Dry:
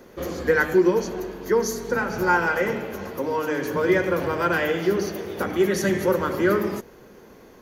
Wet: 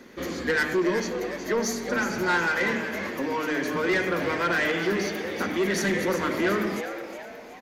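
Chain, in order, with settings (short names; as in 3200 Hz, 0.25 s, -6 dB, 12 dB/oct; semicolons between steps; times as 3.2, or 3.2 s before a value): graphic EQ 250/1000/2000/4000/8000 Hz +11/+3/+11/+8/+7 dB; soft clip -11.5 dBFS, distortion -12 dB; on a send: frequency-shifting echo 0.366 s, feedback 44%, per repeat +130 Hz, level -10 dB; on the sum: gain -7.5 dB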